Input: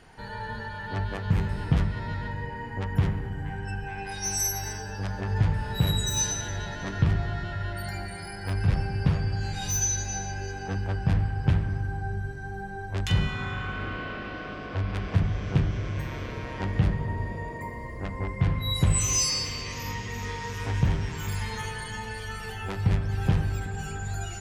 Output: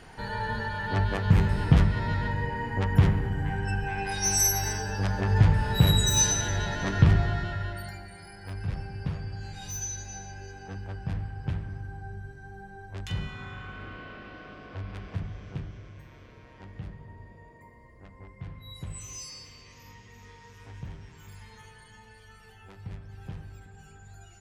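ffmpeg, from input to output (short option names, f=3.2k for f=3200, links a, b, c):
-af "volume=4dB,afade=t=out:st=7.16:d=0.84:silence=0.237137,afade=t=out:st=14.87:d=1.13:silence=0.398107"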